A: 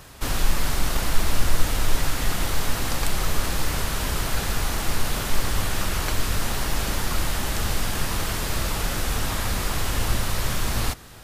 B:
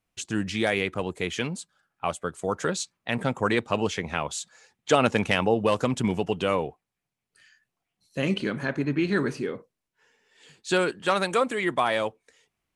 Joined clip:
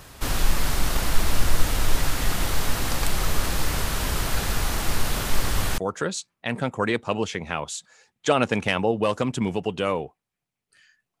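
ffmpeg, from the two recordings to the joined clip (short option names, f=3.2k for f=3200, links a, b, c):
-filter_complex "[0:a]apad=whole_dur=11.2,atrim=end=11.2,atrim=end=5.782[a];[1:a]atrim=start=2.408:end=7.83[b];[a][b]acrossfade=d=0.004:c1=hsin:c2=hsin"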